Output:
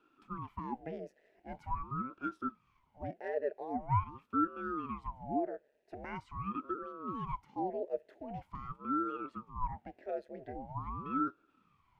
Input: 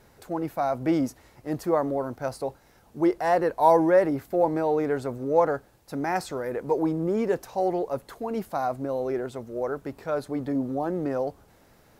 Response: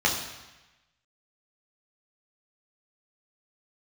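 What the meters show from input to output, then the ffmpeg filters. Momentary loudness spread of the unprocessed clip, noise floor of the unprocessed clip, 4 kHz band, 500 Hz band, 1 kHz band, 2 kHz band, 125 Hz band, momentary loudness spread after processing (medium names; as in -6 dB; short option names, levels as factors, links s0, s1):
11 LU, -58 dBFS, under -15 dB, -17.5 dB, -9.5 dB, -13.0 dB, -6.5 dB, 12 LU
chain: -filter_complex "[0:a]alimiter=limit=0.126:level=0:latency=1:release=436,asplit=3[s0][s1][s2];[s0]bandpass=f=530:t=q:w=8,volume=1[s3];[s1]bandpass=f=1840:t=q:w=8,volume=0.501[s4];[s2]bandpass=f=2480:t=q:w=8,volume=0.355[s5];[s3][s4][s5]amix=inputs=3:normalize=0,aeval=exprs='val(0)*sin(2*PI*460*n/s+460*0.85/0.44*sin(2*PI*0.44*n/s))':c=same,volume=1.12"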